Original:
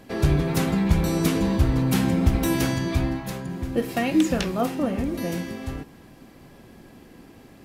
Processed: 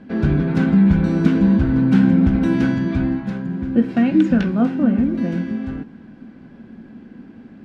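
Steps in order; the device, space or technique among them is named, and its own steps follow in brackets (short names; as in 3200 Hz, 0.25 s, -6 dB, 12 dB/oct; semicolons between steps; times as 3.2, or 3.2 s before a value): inside a cardboard box (LPF 3100 Hz 12 dB/oct; small resonant body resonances 220/1500 Hz, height 16 dB, ringing for 45 ms); gain -2 dB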